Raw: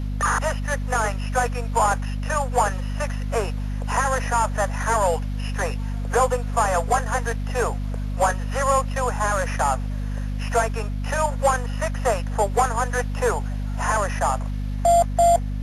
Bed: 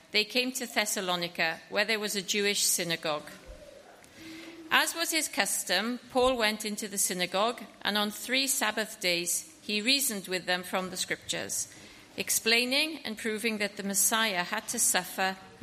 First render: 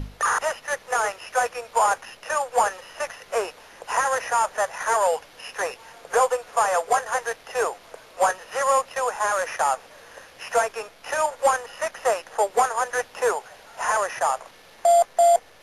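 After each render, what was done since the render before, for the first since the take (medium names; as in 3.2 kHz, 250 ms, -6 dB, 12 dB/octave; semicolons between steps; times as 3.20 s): hum notches 50/100/150/200/250 Hz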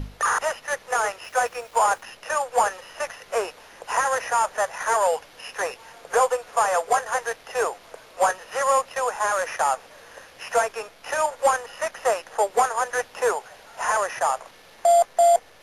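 1.24–2.03 s: small samples zeroed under -47 dBFS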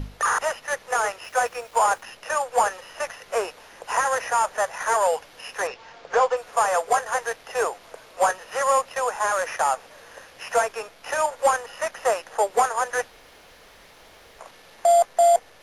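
5.67–6.37 s: low-pass 5.8 kHz 24 dB/octave; 13.10–14.39 s: room tone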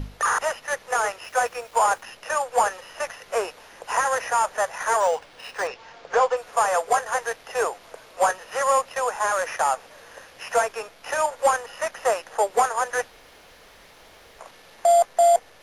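5.00–5.67 s: decimation joined by straight lines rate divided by 3×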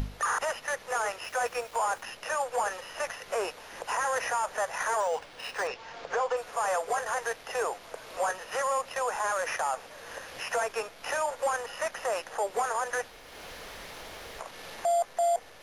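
upward compressor, threshold -35 dBFS; peak limiter -21 dBFS, peak gain reduction 10.5 dB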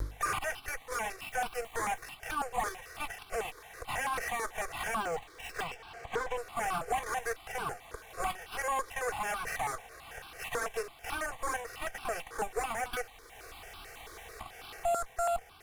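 comb filter that takes the minimum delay 2.6 ms; stepped phaser 9.1 Hz 750–1900 Hz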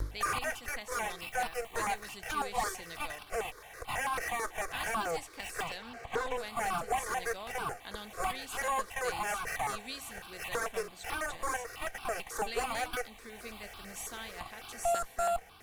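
add bed -17.5 dB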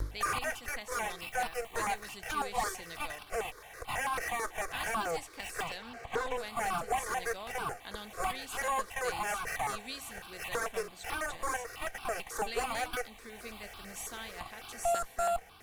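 no audible change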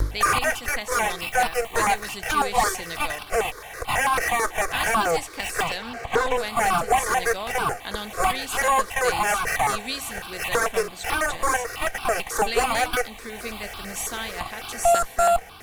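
trim +12 dB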